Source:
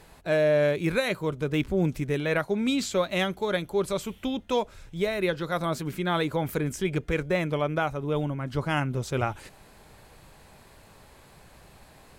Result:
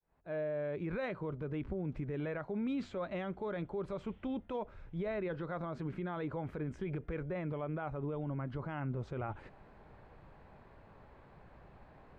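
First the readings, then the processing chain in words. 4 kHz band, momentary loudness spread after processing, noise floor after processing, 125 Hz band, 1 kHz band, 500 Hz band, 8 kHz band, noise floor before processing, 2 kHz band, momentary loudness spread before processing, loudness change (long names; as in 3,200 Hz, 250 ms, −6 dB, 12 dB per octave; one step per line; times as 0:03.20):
−23.5 dB, 21 LU, −59 dBFS, −9.5 dB, −12.5 dB, −12.5 dB, below −30 dB, −54 dBFS, −16.0 dB, 6 LU, −12.0 dB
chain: fade in at the beginning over 1.10 s
low-pass filter 1,600 Hz 12 dB per octave
brickwall limiter −26 dBFS, peak gain reduction 11.5 dB
level −4 dB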